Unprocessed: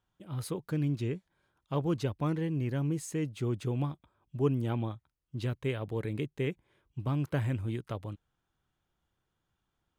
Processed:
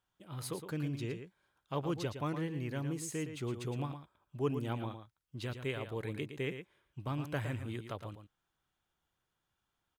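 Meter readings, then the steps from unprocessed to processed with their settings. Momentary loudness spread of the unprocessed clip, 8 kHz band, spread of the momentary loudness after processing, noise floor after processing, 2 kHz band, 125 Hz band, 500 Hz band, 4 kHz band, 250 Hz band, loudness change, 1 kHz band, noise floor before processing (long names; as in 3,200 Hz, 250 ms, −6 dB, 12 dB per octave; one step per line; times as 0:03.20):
11 LU, +0.5 dB, 12 LU, −85 dBFS, 0.0 dB, −7.0 dB, −4.0 dB, +0.5 dB, −5.5 dB, −5.5 dB, −1.0 dB, −83 dBFS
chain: low-shelf EQ 480 Hz −8 dB
single-tap delay 113 ms −9 dB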